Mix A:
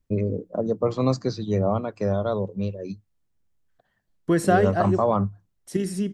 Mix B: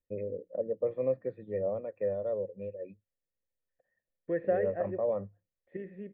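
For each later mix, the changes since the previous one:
master: add cascade formant filter e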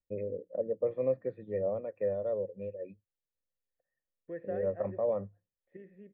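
second voice -9.5 dB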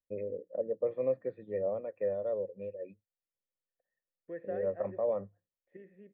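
master: add bass shelf 160 Hz -8.5 dB

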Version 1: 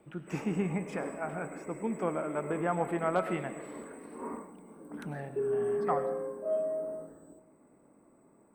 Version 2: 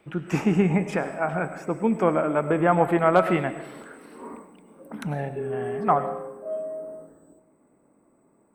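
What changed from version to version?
first voice +11.0 dB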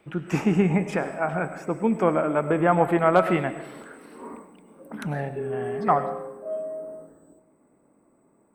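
second voice +9.5 dB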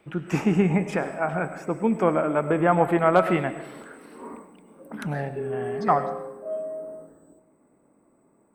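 second voice: remove distance through air 170 m

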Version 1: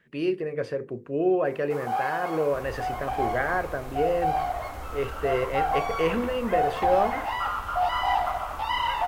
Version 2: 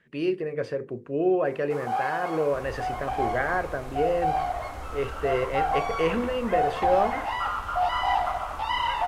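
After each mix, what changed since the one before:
master: add low-pass 11 kHz 12 dB/octave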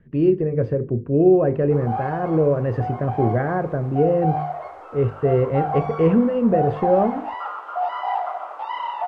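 first sound: add high-pass 590 Hz; second sound: muted; master: add tilt EQ -6 dB/octave

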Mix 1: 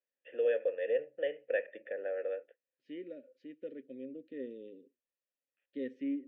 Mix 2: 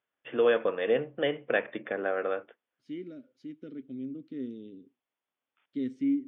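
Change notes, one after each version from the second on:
second voice -11.5 dB; master: remove vowel filter e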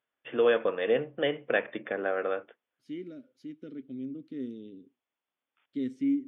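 master: remove distance through air 56 m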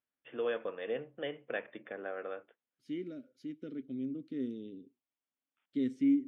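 first voice -10.5 dB

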